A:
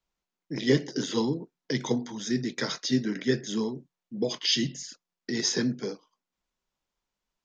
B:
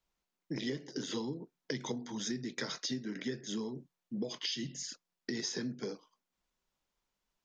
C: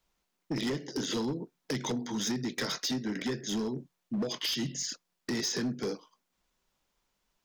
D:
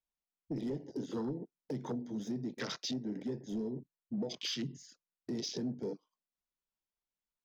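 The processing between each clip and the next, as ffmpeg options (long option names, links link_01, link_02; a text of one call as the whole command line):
ffmpeg -i in.wav -af "acompressor=threshold=-34dB:ratio=12" out.wav
ffmpeg -i in.wav -af "volume=34.5dB,asoftclip=hard,volume=-34.5dB,volume=7dB" out.wav
ffmpeg -i in.wav -af "afwtdn=0.0158,volume=-4.5dB" out.wav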